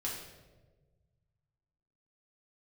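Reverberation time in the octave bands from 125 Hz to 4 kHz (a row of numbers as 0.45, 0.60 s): 2.6, 1.7, 1.6, 1.0, 0.90, 0.80 s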